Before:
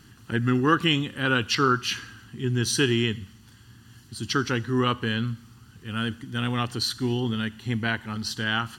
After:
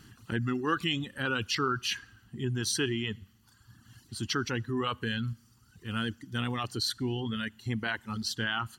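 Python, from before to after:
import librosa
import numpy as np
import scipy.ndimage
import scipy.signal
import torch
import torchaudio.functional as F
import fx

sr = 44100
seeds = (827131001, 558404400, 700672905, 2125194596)

p1 = fx.over_compress(x, sr, threshold_db=-28.0, ratio=-1.0)
p2 = x + (p1 * 10.0 ** (-2.0 / 20.0))
p3 = fx.dereverb_blind(p2, sr, rt60_s=1.3)
y = p3 * 10.0 ** (-8.5 / 20.0)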